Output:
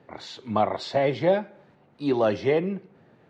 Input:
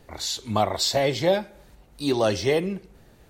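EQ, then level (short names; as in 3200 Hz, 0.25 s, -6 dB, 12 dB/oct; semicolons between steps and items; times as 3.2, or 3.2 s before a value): HPF 120 Hz 24 dB/oct; LPF 2200 Hz 12 dB/oct; 0.0 dB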